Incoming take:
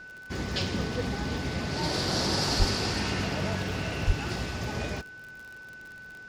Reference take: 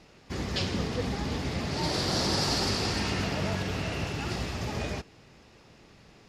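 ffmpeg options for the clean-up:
-filter_complex "[0:a]adeclick=t=4,bandreject=f=1500:w=30,asplit=3[s0][s1][s2];[s0]afade=t=out:st=2.58:d=0.02[s3];[s1]highpass=f=140:w=0.5412,highpass=f=140:w=1.3066,afade=t=in:st=2.58:d=0.02,afade=t=out:st=2.7:d=0.02[s4];[s2]afade=t=in:st=2.7:d=0.02[s5];[s3][s4][s5]amix=inputs=3:normalize=0,asplit=3[s6][s7][s8];[s6]afade=t=out:st=4.06:d=0.02[s9];[s7]highpass=f=140:w=0.5412,highpass=f=140:w=1.3066,afade=t=in:st=4.06:d=0.02,afade=t=out:st=4.18:d=0.02[s10];[s8]afade=t=in:st=4.18:d=0.02[s11];[s9][s10][s11]amix=inputs=3:normalize=0"

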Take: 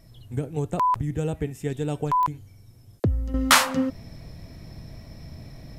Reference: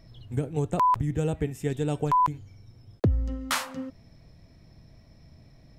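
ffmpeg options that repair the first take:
-af "adeclick=t=4,agate=range=0.0891:threshold=0.00891,asetnsamples=n=441:p=0,asendcmd='3.34 volume volume -11.5dB',volume=1"

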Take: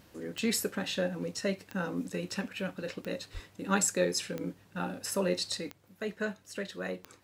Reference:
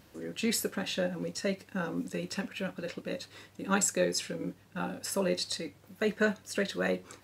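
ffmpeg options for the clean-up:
-filter_complex "[0:a]adeclick=t=4,asplit=3[s0][s1][s2];[s0]afade=t=out:st=3.33:d=0.02[s3];[s1]highpass=f=140:w=0.5412,highpass=f=140:w=1.3066,afade=t=in:st=3.33:d=0.02,afade=t=out:st=3.45:d=0.02[s4];[s2]afade=t=in:st=3.45:d=0.02[s5];[s3][s4][s5]amix=inputs=3:normalize=0,asetnsamples=n=441:p=0,asendcmd='5.7 volume volume 6.5dB',volume=1"

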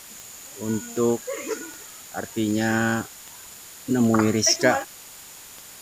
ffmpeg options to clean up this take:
-af "adeclick=t=4,afftdn=nr=25:nf=-43"

